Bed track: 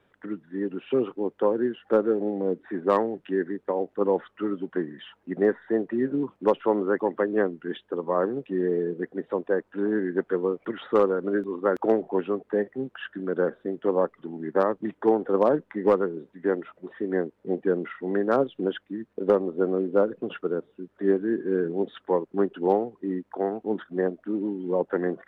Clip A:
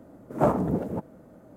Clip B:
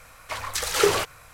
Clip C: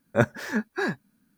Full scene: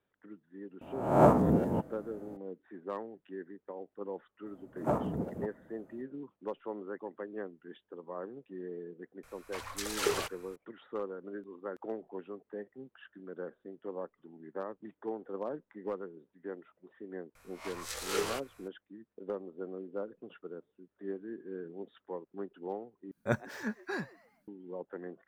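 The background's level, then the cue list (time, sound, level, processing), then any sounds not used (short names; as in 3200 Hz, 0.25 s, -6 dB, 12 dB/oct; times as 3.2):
bed track -17 dB
0.81 add A -2 dB + spectral swells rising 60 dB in 0.69 s
4.46 add A -8.5 dB
9.23 add B -11 dB
17.35 add B -14.5 dB + spectral swells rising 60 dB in 0.36 s
23.11 replace with C -9.5 dB + frequency-shifting echo 0.126 s, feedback 41%, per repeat +150 Hz, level -21 dB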